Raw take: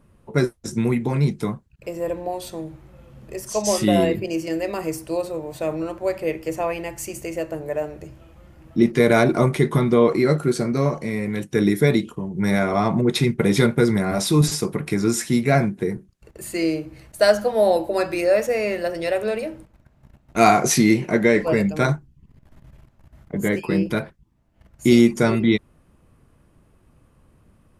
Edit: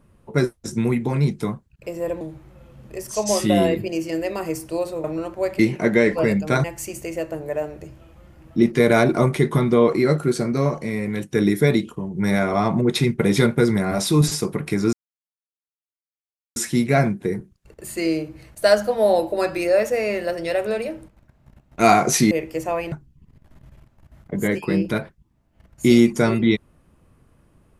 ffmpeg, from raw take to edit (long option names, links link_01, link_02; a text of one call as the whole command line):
ffmpeg -i in.wav -filter_complex "[0:a]asplit=8[link_01][link_02][link_03][link_04][link_05][link_06][link_07][link_08];[link_01]atrim=end=2.212[link_09];[link_02]atrim=start=2.588:end=5.422[link_10];[link_03]atrim=start=5.678:end=6.232[link_11];[link_04]atrim=start=20.878:end=21.932[link_12];[link_05]atrim=start=6.838:end=15.13,asetpts=PTS-STARTPTS,afade=type=out:start_time=8.288:duration=0.004:curve=hsin,apad=pad_dur=1.63[link_13];[link_06]atrim=start=15.13:end=20.882,asetpts=PTS-STARTPTS,afade=type=in:duration=0.004:curve=hsin[link_14];[link_07]atrim=start=6.228:end=6.842[link_15];[link_08]atrim=start=21.928[link_16];[link_09][link_10]acrossfade=duration=0.004:curve1=hsin:curve2=hsin[link_17];[link_17][link_11]acrossfade=duration=0.004:curve1=hsin:curve2=hsin[link_18];[link_18][link_12]acrossfade=duration=0.004:curve1=hsin:curve2=hsin[link_19];[link_13][link_14]concat=n=2:v=0:a=1[link_20];[link_19][link_20]acrossfade=duration=0.004:curve1=hsin:curve2=hsin[link_21];[link_21][link_15]acrossfade=duration=0.004:curve1=hsin:curve2=hsin[link_22];[link_22][link_16]acrossfade=duration=0.004:curve1=hsin:curve2=hsin" out.wav